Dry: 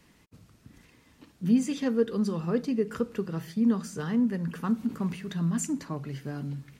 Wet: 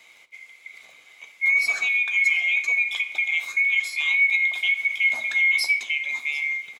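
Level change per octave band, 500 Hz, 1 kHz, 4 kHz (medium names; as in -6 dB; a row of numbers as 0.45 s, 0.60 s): under -20 dB, no reading, +17.0 dB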